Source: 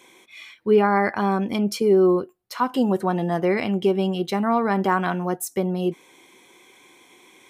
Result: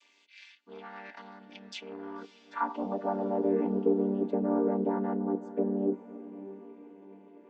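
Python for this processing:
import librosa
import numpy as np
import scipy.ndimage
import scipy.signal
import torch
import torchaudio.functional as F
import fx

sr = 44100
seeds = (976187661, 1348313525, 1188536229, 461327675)

p1 = fx.chord_vocoder(x, sr, chord='minor triad', root=55)
p2 = fx.peak_eq(p1, sr, hz=4200.0, db=-5.0, octaves=0.66)
p3 = fx.over_compress(p2, sr, threshold_db=-31.0, ratio=-1.0)
p4 = p2 + (p3 * 10.0 ** (0.0 / 20.0))
p5 = fx.tube_stage(p4, sr, drive_db=9.0, bias=0.4)
p6 = fx.filter_sweep_bandpass(p5, sr, from_hz=4500.0, to_hz=440.0, start_s=1.5, end_s=3.42, q=2.0)
y = p6 + fx.echo_diffused(p6, sr, ms=587, feedback_pct=47, wet_db=-15.0, dry=0)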